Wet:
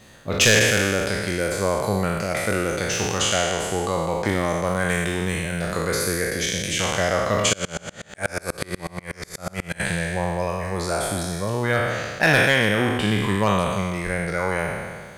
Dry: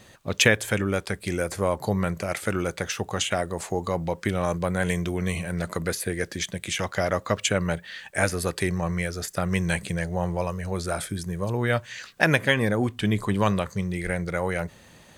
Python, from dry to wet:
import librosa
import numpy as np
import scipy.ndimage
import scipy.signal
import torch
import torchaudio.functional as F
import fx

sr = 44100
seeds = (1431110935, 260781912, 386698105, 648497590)

y = fx.spec_trails(x, sr, decay_s=1.73)
y = np.clip(y, -10.0 ** (-9.0 / 20.0), 10.0 ** (-9.0 / 20.0))
y = fx.tremolo_decay(y, sr, direction='swelling', hz=8.2, depth_db=32, at=(7.53, 9.8))